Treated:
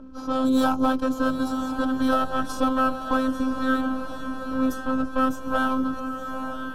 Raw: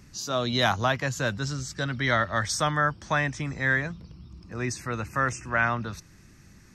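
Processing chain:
lower of the sound and its delayed copy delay 1.2 ms
spectral tilt −2 dB per octave
phases set to zero 261 Hz
drawn EQ curve 190 Hz 0 dB, 390 Hz +9 dB, 560 Hz +7 dB, 950 Hz +6 dB, 1,400 Hz +11 dB, 2,000 Hz −19 dB, 3,200 Hz +2 dB, 4,600 Hz −2 dB, 6,600 Hz −1 dB, 11,000 Hz +12 dB
on a send at −5.5 dB: convolution reverb RT60 0.10 s, pre-delay 3 ms
on the sum: low-pass that shuts in the quiet parts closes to 2,500 Hz, open at −17.5 dBFS
feedback delay with all-pass diffusion 910 ms, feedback 52%, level −9.5 dB
in parallel at −2.5 dB: downward compressor, threshold −30 dBFS, peak gain reduction 13.5 dB
on the sum: level −2 dB

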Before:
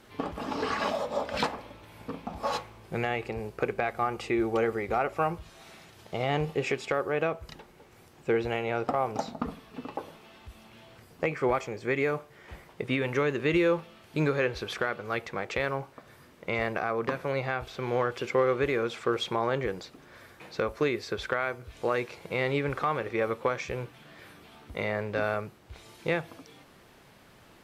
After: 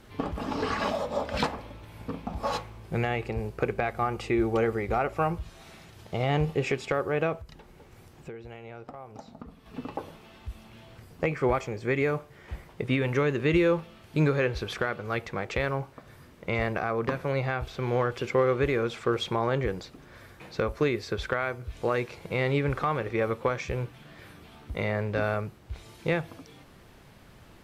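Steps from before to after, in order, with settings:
low-shelf EQ 140 Hz +11.5 dB
0:07.41–0:09.66: downward compressor 4 to 1, threshold −43 dBFS, peak gain reduction 18.5 dB

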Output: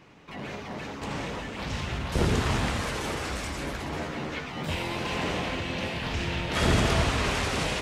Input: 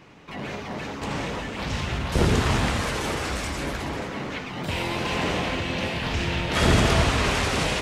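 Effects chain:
0:03.91–0:04.75: double-tracking delay 13 ms −2 dB
level −4 dB

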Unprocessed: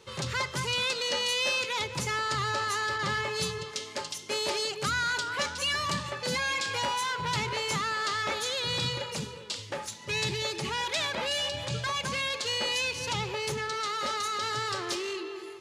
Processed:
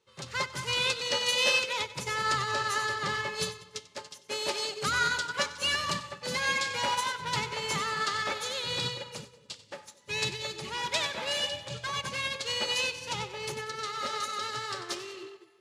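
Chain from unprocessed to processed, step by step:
low-shelf EQ 150 Hz −5 dB
on a send: echo with a time of its own for lows and highs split 610 Hz, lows 221 ms, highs 94 ms, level −8 dB
on the sum: expander for the loud parts 2.5 to 1, over −41 dBFS
level +3.5 dB

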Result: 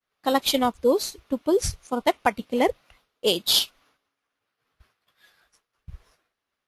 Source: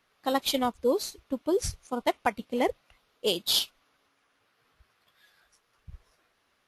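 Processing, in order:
downward expander −60 dBFS
level +5 dB

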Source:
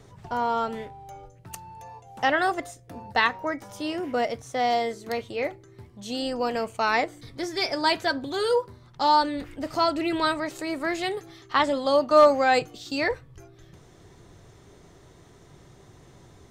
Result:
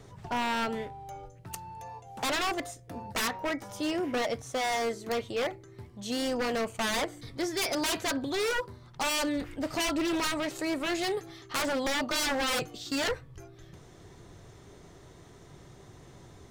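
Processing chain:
wave folding −24 dBFS

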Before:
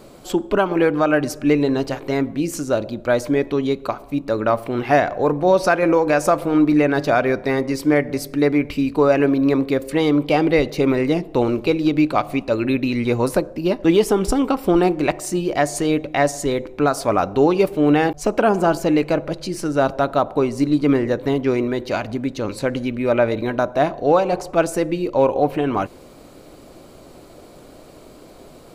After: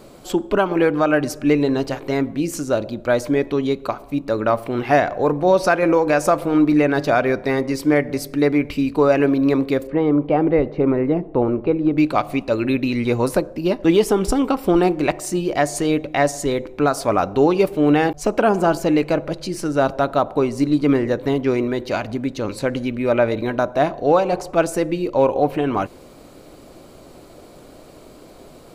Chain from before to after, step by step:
0:09.87–0:11.98: low-pass filter 1,300 Hz 12 dB per octave

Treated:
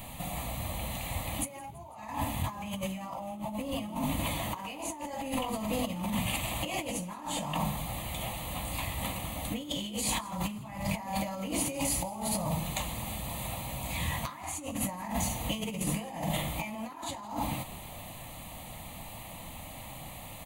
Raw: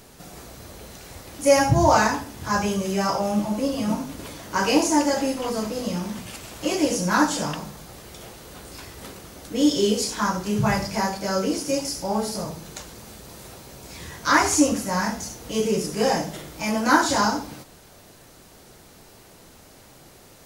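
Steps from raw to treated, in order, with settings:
phaser with its sweep stopped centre 1,500 Hz, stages 6
compressor whose output falls as the input rises −37 dBFS, ratio −1
echo with shifted repeats 166 ms, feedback 56%, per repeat +60 Hz, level −21 dB
level +1 dB

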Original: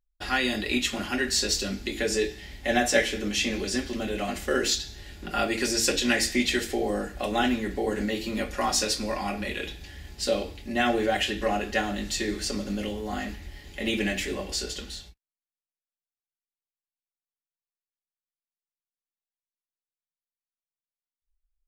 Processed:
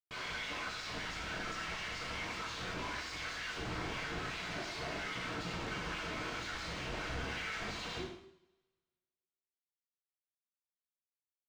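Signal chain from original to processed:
first difference
leveller curve on the samples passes 2
downward compressor 10 to 1, threshold −38 dBFS, peak gain reduction 19 dB
mid-hump overdrive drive 27 dB, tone 1,800 Hz, clips at −16 dBFS
time stretch by overlap-add 0.53×, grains 43 ms
comparator with hysteresis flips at −46.5 dBFS
frequency shifter −390 Hz
wave folding −36.5 dBFS
high-frequency loss of the air 150 metres
on a send: single-tap delay 73 ms −10 dB
on the sum: coupled-rooms reverb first 0.64 s, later 1.7 s, from −26 dB, DRR −3.5 dB
level −2 dB

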